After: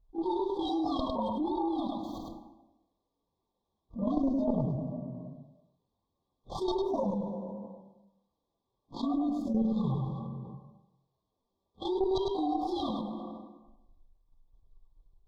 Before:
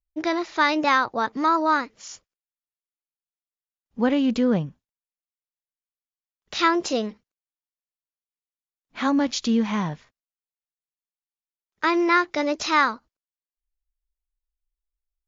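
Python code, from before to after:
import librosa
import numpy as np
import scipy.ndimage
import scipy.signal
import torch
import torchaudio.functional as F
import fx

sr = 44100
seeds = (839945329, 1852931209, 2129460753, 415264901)

p1 = fx.partial_stretch(x, sr, pct=130)
p2 = fx.chorus_voices(p1, sr, voices=2, hz=1.2, base_ms=24, depth_ms=3.1, mix_pct=65)
p3 = fx.level_steps(p2, sr, step_db=11)
p4 = fx.air_absorb(p3, sr, metres=210.0)
p5 = fx.rev_plate(p4, sr, seeds[0], rt60_s=0.98, hf_ratio=0.7, predelay_ms=0, drr_db=11.0)
p6 = fx.cheby_harmonics(p5, sr, harmonics=(2,), levels_db=(-7,), full_scale_db=-13.5)
p7 = fx.brickwall_bandstop(p6, sr, low_hz=1200.0, high_hz=3200.0)
p8 = fx.high_shelf(p7, sr, hz=3100.0, db=-11.0)
p9 = p8 + fx.echo_single(p8, sr, ms=103, db=-7.5, dry=0)
p10 = fx.env_flatten(p9, sr, amount_pct=70)
y = F.gain(torch.from_numpy(p10), -5.0).numpy()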